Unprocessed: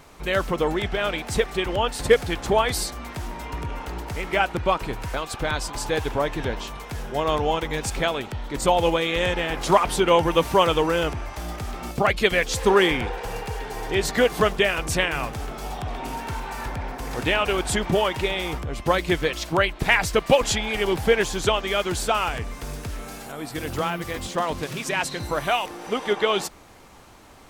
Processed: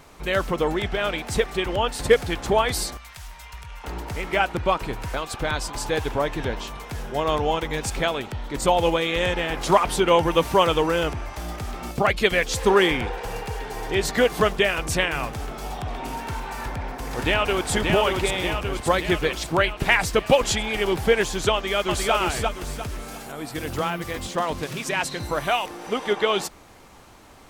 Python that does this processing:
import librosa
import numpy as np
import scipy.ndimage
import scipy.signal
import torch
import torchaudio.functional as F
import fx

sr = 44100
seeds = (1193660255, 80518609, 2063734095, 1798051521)

y = fx.tone_stack(x, sr, knobs='10-0-10', at=(2.97, 3.84))
y = fx.echo_throw(y, sr, start_s=16.6, length_s=1.12, ms=580, feedback_pct=65, wet_db=-3.5)
y = fx.echo_throw(y, sr, start_s=21.53, length_s=0.6, ms=350, feedback_pct=35, wet_db=-2.5)